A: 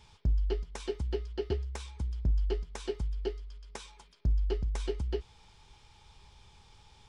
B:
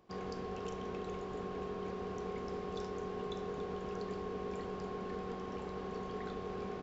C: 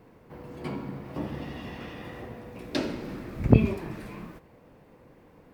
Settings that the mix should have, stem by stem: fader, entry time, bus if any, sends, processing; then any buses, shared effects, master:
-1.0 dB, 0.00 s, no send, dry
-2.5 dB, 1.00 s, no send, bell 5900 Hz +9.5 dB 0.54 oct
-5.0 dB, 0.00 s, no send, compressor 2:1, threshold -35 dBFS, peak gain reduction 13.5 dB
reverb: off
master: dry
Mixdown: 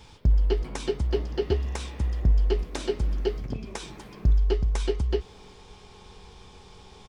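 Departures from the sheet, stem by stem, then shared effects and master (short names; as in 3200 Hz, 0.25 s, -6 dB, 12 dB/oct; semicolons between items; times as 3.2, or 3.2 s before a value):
stem A -1.0 dB -> +7.5 dB; stem B -2.5 dB -> -13.0 dB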